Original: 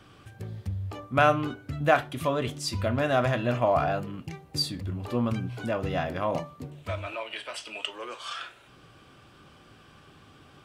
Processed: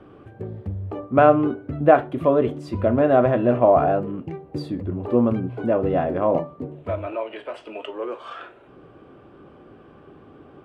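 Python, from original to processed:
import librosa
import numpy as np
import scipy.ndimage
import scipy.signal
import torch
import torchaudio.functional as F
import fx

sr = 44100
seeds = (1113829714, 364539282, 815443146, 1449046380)

y = fx.curve_eq(x, sr, hz=(130.0, 260.0, 390.0, 2800.0, 5500.0), db=(0, 7, 11, -9, -21))
y = F.gain(torch.from_numpy(y), 2.5).numpy()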